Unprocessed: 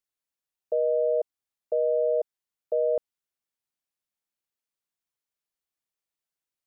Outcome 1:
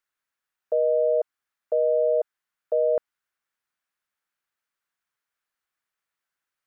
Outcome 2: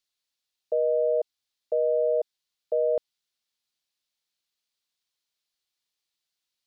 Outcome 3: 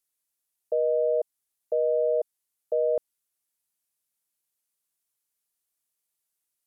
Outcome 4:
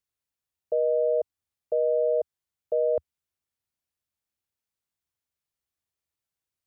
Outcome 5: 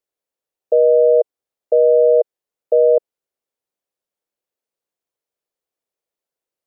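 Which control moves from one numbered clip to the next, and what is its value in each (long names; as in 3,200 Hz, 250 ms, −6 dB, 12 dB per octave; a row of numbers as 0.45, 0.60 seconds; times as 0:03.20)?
parametric band, centre frequency: 1,500, 4,100, 11,000, 81, 490 Hertz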